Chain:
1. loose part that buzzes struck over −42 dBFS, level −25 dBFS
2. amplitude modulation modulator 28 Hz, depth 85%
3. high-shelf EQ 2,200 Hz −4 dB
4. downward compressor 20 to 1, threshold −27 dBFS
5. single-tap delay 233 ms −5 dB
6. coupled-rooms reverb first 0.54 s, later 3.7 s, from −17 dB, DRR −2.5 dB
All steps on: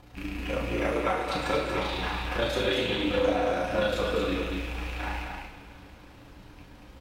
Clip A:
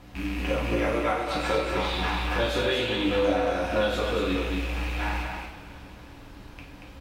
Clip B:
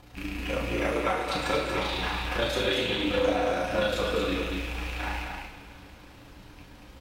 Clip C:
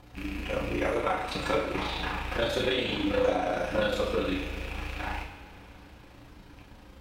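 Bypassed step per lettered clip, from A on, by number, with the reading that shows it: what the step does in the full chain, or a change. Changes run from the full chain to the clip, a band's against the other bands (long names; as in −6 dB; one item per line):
2, change in momentary loudness spread +10 LU
3, 8 kHz band +3.0 dB
5, echo-to-direct ratio 4.0 dB to 2.5 dB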